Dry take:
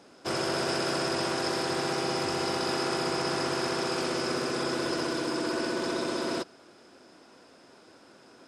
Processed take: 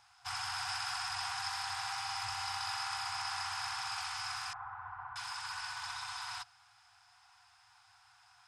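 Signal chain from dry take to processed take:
0:04.53–0:05.16: low-pass filter 1,300 Hz 24 dB per octave
brick-wall band-stop 120–700 Hz
level −5.5 dB

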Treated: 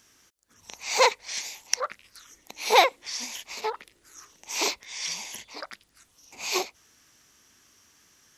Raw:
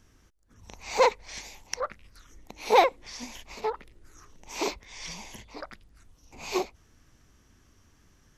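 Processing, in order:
high-pass filter 380 Hz 6 dB per octave
high-shelf EQ 2,000 Hz +10.5 dB

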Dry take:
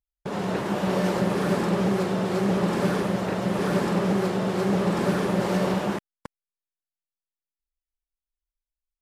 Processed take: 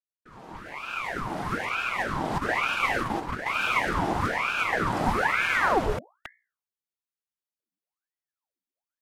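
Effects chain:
fade in at the beginning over 2.54 s
0:02.38–0:03.54: noise gate −25 dBFS, range −7 dB
mains-hum notches 60/120/180/240 Hz
high-pass filter sweep 530 Hz → 64 Hz, 0:04.96–0:06.48
ring modulator whose carrier an LFO sweeps 1,100 Hz, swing 80%, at 1.1 Hz

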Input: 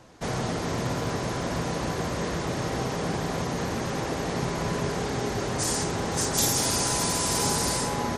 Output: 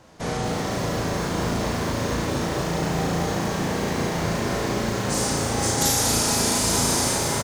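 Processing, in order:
log-companded quantiser 8 bits
tempo change 1.1×
on a send: flutter between parallel walls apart 6.1 metres, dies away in 0.65 s
on the sum: feedback echo at a low word length 234 ms, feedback 80%, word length 7 bits, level −6 dB

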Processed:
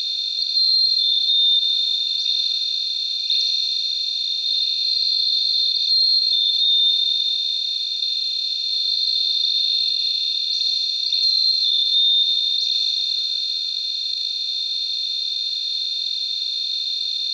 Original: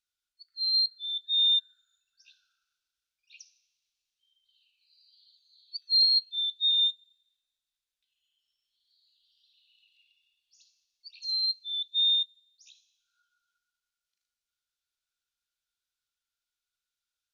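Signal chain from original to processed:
compressor on every frequency bin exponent 0.2
brickwall limiter −18 dBFS, peak gain reduction 7.5 dB
level +7.5 dB

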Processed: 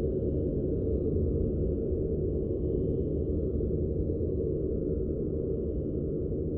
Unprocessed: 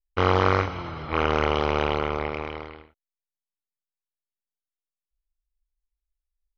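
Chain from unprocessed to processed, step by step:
gate on every frequency bin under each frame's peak −30 dB strong
inverse Chebyshev low-pass filter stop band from 810 Hz, stop band 40 dB
extreme stretch with random phases 24×, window 0.05 s, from 0:01.80

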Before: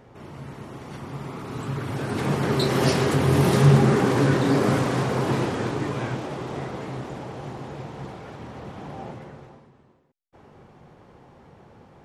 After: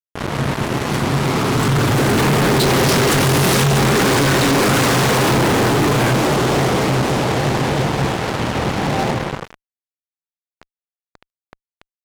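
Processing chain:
0:03.07–0:05.33: tilt shelving filter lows −4 dB, about 1,300 Hz
fuzz pedal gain 41 dB, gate −40 dBFS

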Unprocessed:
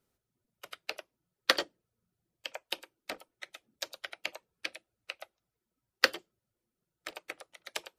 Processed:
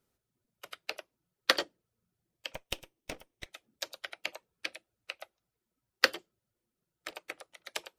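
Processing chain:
0:02.54–0:03.46: lower of the sound and its delayed copy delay 0.33 ms

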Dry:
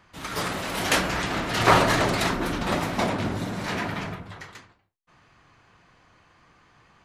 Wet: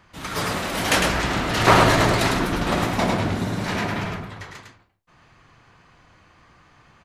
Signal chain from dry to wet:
low-shelf EQ 130 Hz +3.5 dB
single-tap delay 104 ms −4 dB
level +2 dB

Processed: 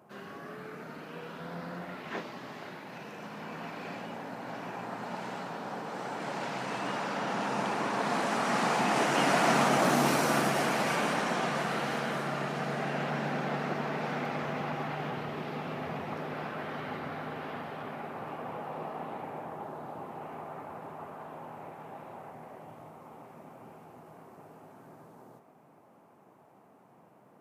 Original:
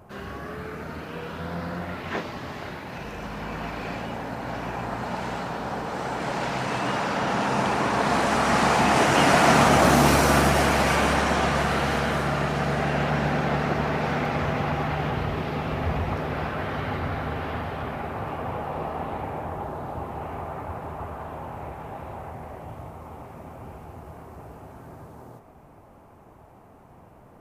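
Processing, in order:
high-pass filter 150 Hz 24 dB per octave
level −7.5 dB

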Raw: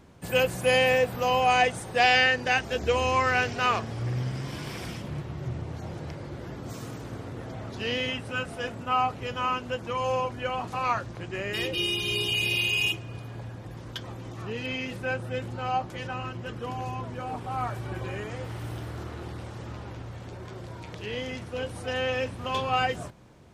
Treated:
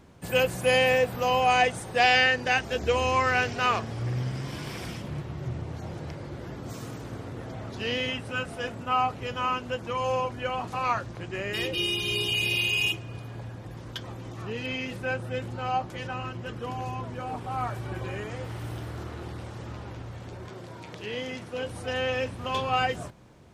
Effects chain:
0:20.49–0:21.66: high-pass filter 130 Hz 12 dB per octave

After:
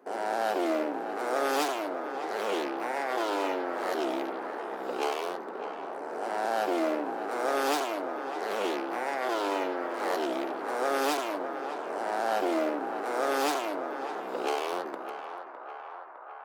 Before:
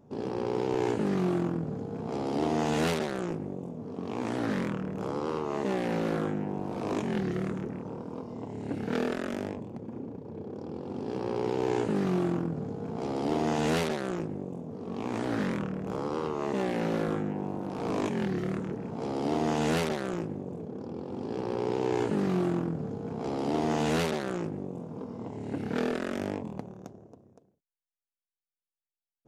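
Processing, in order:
high-pass filter 150 Hz 24 dB per octave
change of speed 1.78×
feedback echo with a band-pass in the loop 608 ms, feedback 82%, band-pass 1,100 Hz, level −8.5 dB

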